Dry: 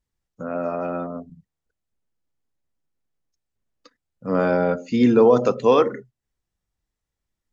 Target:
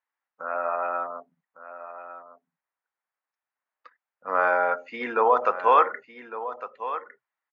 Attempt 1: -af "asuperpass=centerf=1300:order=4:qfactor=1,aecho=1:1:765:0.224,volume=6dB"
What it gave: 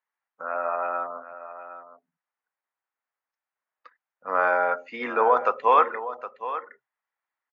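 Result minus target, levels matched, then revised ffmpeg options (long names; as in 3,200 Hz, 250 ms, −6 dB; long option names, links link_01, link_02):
echo 391 ms early
-af "asuperpass=centerf=1300:order=4:qfactor=1,aecho=1:1:1156:0.224,volume=6dB"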